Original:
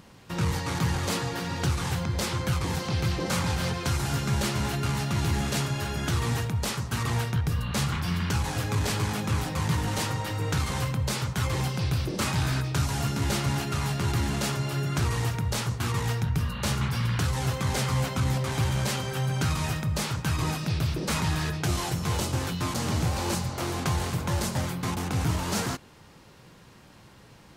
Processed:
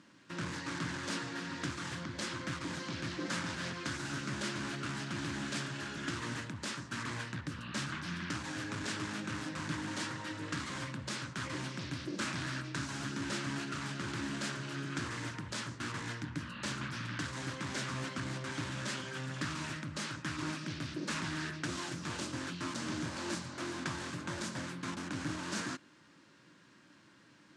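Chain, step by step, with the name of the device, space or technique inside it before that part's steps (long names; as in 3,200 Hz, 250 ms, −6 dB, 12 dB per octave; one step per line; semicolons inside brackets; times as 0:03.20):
full-range speaker at full volume (highs frequency-modulated by the lows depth 0.47 ms; loudspeaker in its box 190–8,700 Hz, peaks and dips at 300 Hz +8 dB, 450 Hz −9 dB, 770 Hz −10 dB, 1,600 Hz +6 dB)
level −8 dB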